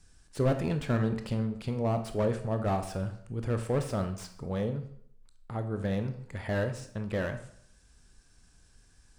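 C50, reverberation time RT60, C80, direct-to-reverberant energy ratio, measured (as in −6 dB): 10.0 dB, 0.65 s, 13.5 dB, 7.0 dB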